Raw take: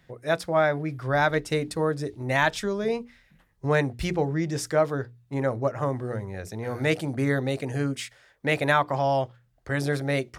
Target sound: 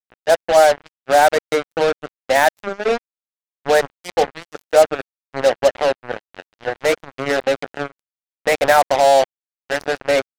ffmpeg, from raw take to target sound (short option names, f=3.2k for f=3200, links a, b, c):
-af "highpass=f=290:w=0.5412,highpass=f=290:w=1.3066,equalizer=f=340:t=q:w=4:g=-7,equalizer=f=530:t=q:w=4:g=7,equalizer=f=760:t=q:w=4:g=9,equalizer=f=1.1k:t=q:w=4:g=-7,equalizer=f=2.9k:t=q:w=4:g=-8,equalizer=f=4.3k:t=q:w=4:g=-5,lowpass=f=6.2k:w=0.5412,lowpass=f=6.2k:w=1.3066,acrusher=bits=3:mix=0:aa=0.5,volume=6dB"